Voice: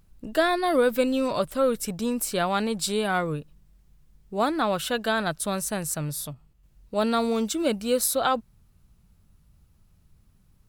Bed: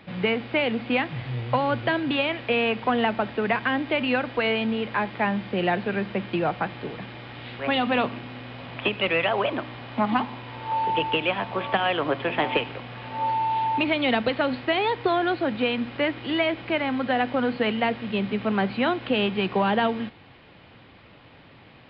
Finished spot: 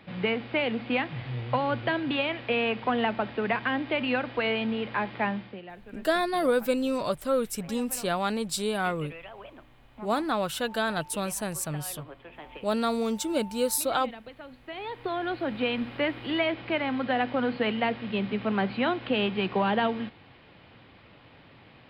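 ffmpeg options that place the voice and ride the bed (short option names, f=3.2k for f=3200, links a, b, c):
-filter_complex "[0:a]adelay=5700,volume=-3dB[a];[1:a]volume=14.5dB,afade=t=out:st=5.25:d=0.37:silence=0.133352,afade=t=in:st=14.59:d=1.15:silence=0.125893[b];[a][b]amix=inputs=2:normalize=0"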